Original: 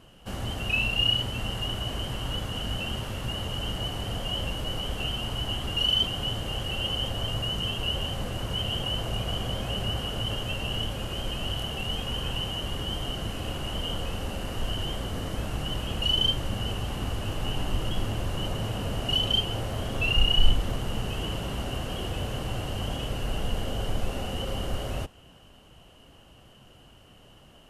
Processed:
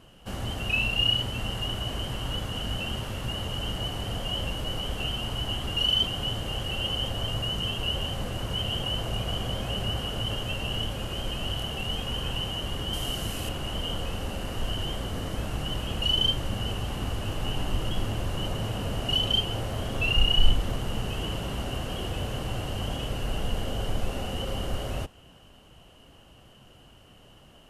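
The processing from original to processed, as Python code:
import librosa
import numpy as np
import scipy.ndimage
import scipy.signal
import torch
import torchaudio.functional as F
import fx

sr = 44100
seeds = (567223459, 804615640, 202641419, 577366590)

y = fx.high_shelf(x, sr, hz=4700.0, db=10.5, at=(12.93, 13.49))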